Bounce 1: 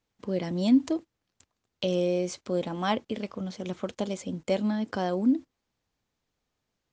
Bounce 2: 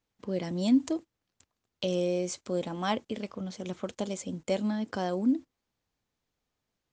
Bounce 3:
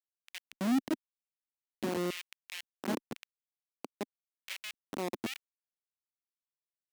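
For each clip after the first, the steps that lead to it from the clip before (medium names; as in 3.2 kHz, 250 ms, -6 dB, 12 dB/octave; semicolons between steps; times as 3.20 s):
dynamic bell 7.7 kHz, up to +7 dB, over -59 dBFS, Q 1.5; trim -2.5 dB
Schmitt trigger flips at -26 dBFS; LFO high-pass square 0.95 Hz 260–2500 Hz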